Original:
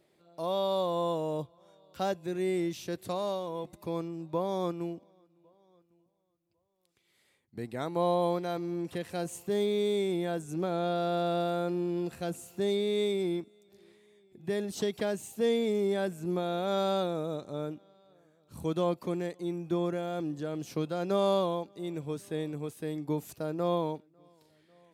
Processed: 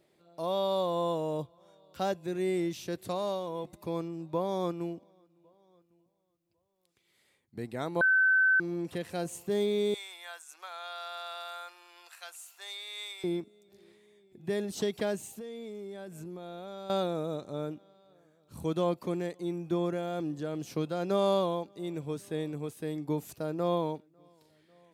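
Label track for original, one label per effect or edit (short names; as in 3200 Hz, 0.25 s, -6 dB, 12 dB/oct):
8.010000	8.600000	bleep 1530 Hz -20.5 dBFS
9.940000	13.240000	HPF 1000 Hz 24 dB/oct
15.250000	16.900000	compressor 8:1, threshold -39 dBFS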